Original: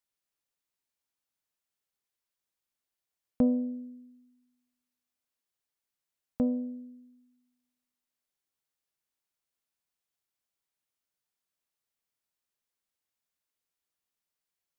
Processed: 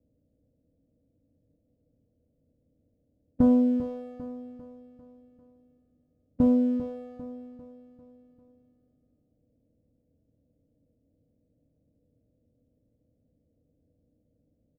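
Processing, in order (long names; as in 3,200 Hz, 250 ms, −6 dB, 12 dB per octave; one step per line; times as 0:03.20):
compressor on every frequency bin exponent 0.6
Butterworth low-pass 610 Hz 48 dB per octave
parametric band 83 Hz +12 dB 2.2 octaves
leveller curve on the samples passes 1
repeating echo 397 ms, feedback 49%, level −12 dB
feedback delay network reverb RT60 0.36 s, low-frequency decay 0.85×, high-frequency decay 0.75×, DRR 6 dB
level −2 dB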